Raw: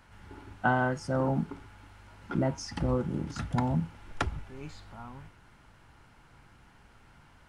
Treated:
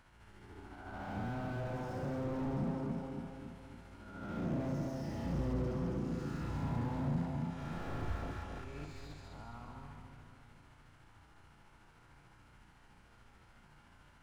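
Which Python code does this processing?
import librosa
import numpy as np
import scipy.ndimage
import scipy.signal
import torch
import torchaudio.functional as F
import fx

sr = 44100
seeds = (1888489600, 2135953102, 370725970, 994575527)

p1 = fx.spec_swells(x, sr, rise_s=0.62)
p2 = fx.stretch_grains(p1, sr, factor=1.9, grain_ms=146.0)
p3 = p2 + fx.echo_split(p2, sr, split_hz=770.0, low_ms=278, high_ms=206, feedback_pct=52, wet_db=-5, dry=0)
p4 = fx.slew_limit(p3, sr, full_power_hz=13.0)
y = F.gain(torch.from_numpy(p4), -6.5).numpy()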